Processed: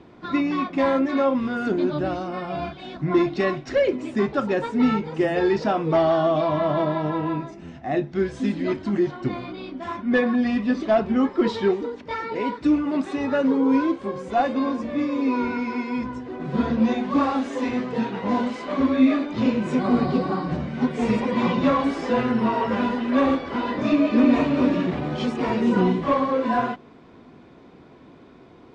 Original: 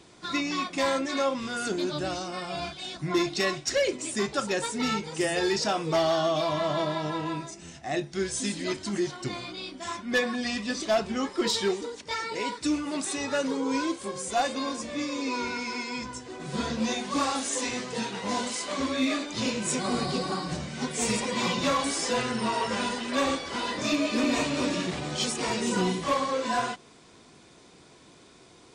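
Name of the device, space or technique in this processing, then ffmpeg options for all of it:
phone in a pocket: -af "lowpass=3.1k,equalizer=f=250:t=o:w=0.34:g=5.5,highshelf=f=2.1k:g=-11.5,volume=6.5dB"

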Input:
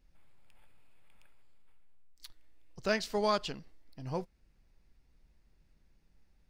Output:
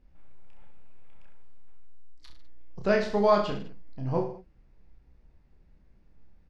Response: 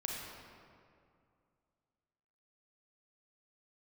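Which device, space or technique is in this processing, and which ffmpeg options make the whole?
through cloth: -filter_complex "[0:a]lowpass=6.7k,highshelf=f=2.2k:g=-14,asplit=2[a][b];[b]adelay=16,volume=-12.5dB[c];[a][c]amix=inputs=2:normalize=0,aecho=1:1:30|64.5|104.2|149.8|202.3:0.631|0.398|0.251|0.158|0.1,volume=6.5dB"

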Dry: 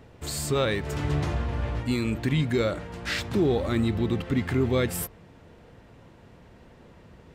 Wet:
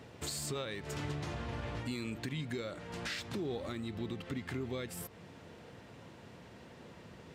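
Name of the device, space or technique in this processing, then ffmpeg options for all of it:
broadcast voice chain: -af "highpass=100,deesser=0.6,acompressor=threshold=-37dB:ratio=3,equalizer=f=5.3k:t=o:w=2.5:g=5,alimiter=level_in=3dB:limit=-24dB:level=0:latency=1:release=435,volume=-3dB,volume=-1dB"

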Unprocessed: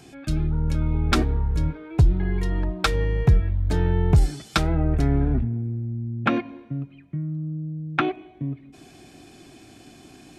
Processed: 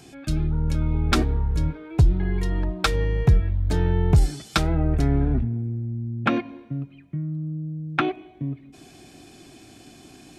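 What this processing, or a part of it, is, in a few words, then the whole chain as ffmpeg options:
exciter from parts: -filter_complex "[0:a]asplit=2[a][b];[b]highpass=2.5k,asoftclip=type=tanh:threshold=-28dB,volume=-10dB[c];[a][c]amix=inputs=2:normalize=0"

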